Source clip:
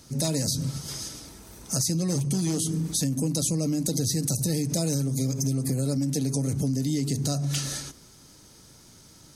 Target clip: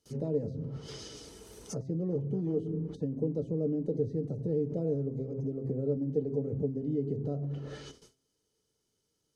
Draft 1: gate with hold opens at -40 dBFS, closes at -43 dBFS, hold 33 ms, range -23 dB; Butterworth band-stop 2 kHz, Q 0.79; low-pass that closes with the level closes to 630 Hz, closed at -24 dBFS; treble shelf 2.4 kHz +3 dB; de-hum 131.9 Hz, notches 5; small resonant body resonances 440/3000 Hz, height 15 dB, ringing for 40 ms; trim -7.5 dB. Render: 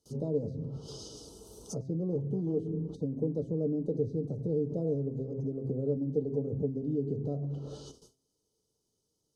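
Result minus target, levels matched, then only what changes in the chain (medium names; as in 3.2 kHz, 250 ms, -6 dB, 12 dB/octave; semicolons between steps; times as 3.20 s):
2 kHz band -19.0 dB
remove: Butterworth band-stop 2 kHz, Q 0.79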